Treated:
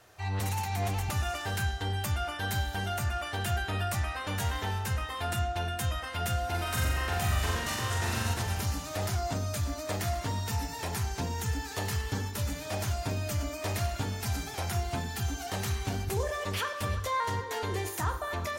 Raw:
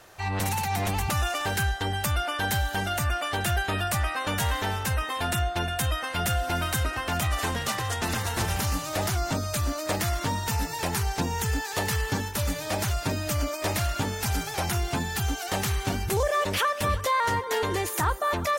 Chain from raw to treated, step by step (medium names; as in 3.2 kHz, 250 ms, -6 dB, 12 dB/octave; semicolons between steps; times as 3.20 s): 6.50–8.34 s: flutter echo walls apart 7.5 m, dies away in 0.99 s; on a send at -6 dB: reverberation RT60 0.70 s, pre-delay 3 ms; on the sum: trim -7.5 dB